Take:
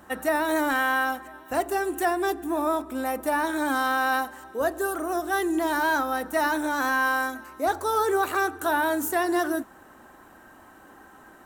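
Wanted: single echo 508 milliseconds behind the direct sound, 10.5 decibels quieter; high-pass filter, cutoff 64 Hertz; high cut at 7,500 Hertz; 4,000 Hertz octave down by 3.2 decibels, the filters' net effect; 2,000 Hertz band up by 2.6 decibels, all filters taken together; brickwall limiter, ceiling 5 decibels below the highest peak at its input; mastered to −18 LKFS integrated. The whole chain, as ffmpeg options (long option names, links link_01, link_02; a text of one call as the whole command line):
ffmpeg -i in.wav -af "highpass=64,lowpass=7500,equalizer=frequency=2000:width_type=o:gain=4.5,equalizer=frequency=4000:width_type=o:gain=-5.5,alimiter=limit=-17dB:level=0:latency=1,aecho=1:1:508:0.299,volume=9dB" out.wav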